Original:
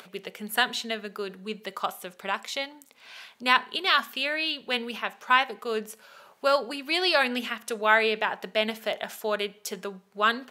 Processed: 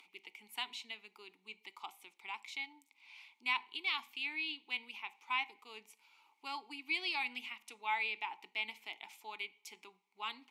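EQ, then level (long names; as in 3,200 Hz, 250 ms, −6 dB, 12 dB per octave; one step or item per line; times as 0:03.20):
formant filter u
first difference
+15.0 dB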